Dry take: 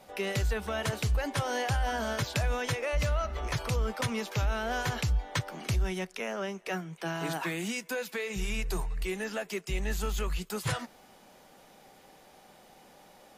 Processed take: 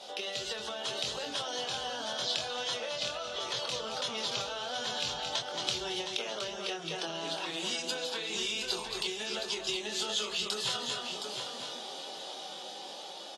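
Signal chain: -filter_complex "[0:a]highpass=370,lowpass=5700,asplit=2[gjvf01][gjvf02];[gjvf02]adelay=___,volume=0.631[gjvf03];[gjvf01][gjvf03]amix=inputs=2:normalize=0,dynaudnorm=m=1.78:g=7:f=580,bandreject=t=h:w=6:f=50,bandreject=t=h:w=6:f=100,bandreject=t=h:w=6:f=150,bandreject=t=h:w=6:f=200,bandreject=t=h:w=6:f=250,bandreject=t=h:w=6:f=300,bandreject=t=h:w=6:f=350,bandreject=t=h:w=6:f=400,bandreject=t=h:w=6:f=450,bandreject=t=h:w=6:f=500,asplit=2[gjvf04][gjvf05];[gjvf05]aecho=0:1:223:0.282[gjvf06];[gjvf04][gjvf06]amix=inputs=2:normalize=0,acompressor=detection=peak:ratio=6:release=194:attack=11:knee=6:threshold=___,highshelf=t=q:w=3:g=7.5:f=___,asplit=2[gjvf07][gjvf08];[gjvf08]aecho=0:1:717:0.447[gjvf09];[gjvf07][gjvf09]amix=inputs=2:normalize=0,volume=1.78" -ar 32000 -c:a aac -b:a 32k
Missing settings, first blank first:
24, 0.00631, 2700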